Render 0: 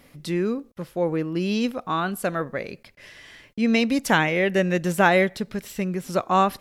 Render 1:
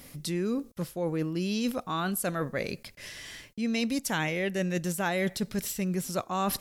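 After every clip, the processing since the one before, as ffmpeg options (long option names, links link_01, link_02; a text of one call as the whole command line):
ffmpeg -i in.wav -af "bass=frequency=250:gain=4,treble=frequency=4000:gain=11,areverse,acompressor=threshold=-27dB:ratio=5,areverse" out.wav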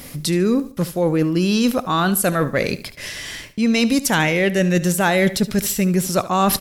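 ffmpeg -i in.wav -filter_complex "[0:a]asplit=2[link_01][link_02];[link_02]asoftclip=type=hard:threshold=-24dB,volume=-5.5dB[link_03];[link_01][link_03]amix=inputs=2:normalize=0,aecho=1:1:73|146|219:0.158|0.046|0.0133,volume=8.5dB" out.wav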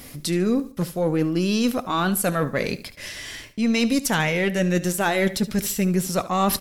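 ffmpeg -i in.wav -af "aeval=exprs='0.531*(cos(1*acos(clip(val(0)/0.531,-1,1)))-cos(1*PI/2))+0.0211*(cos(4*acos(clip(val(0)/0.531,-1,1)))-cos(4*PI/2))':channel_layout=same,flanger=delay=2.6:depth=2.2:regen=-68:speed=0.59:shape=triangular" out.wav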